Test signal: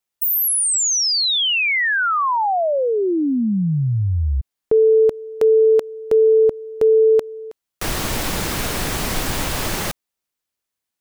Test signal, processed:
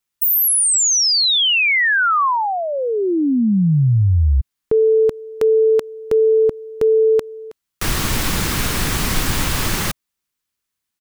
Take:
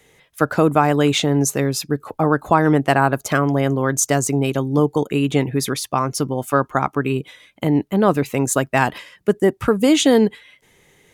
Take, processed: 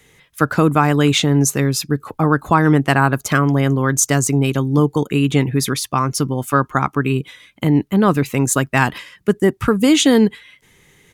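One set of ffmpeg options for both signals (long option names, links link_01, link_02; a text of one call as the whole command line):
ffmpeg -i in.wav -af "firequalizer=gain_entry='entry(130,0);entry(630,-9);entry(1100,-2)':delay=0.05:min_phase=1,volume=5dB" out.wav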